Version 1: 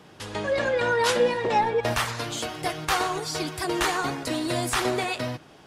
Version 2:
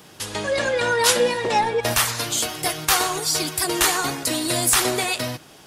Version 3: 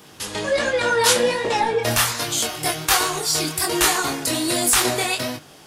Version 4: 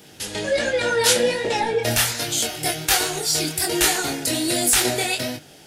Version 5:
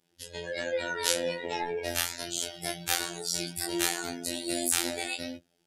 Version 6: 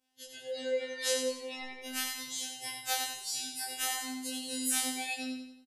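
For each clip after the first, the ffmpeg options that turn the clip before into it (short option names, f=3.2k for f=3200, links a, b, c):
-af "aemphasis=mode=production:type=75kf,volume=1.5dB"
-af "flanger=delay=19.5:depth=6.7:speed=1.3,volume=4dB"
-af "equalizer=f=1.1k:t=o:w=0.36:g=-14"
-af "afftfilt=real='hypot(re,im)*cos(PI*b)':imag='0':win_size=2048:overlap=0.75,afftdn=nr=18:nf=-36,volume=-6.5dB"
-filter_complex "[0:a]asplit=2[a][b];[b]aecho=0:1:90|180|270|360|450:0.501|0.221|0.097|0.0427|0.0188[c];[a][c]amix=inputs=2:normalize=0,afftfilt=real='re*2.45*eq(mod(b,6),0)':imag='im*2.45*eq(mod(b,6),0)':win_size=2048:overlap=0.75,volume=-4.5dB"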